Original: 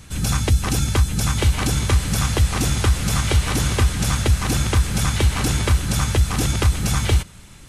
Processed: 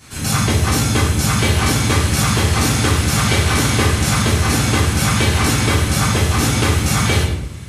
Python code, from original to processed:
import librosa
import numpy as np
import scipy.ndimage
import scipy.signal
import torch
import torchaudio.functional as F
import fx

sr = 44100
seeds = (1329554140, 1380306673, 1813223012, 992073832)

y = fx.highpass(x, sr, hz=210.0, slope=6)
y = fx.room_shoebox(y, sr, seeds[0], volume_m3=240.0, walls='mixed', distance_m=3.3)
y = y * 10.0 ** (-2.5 / 20.0)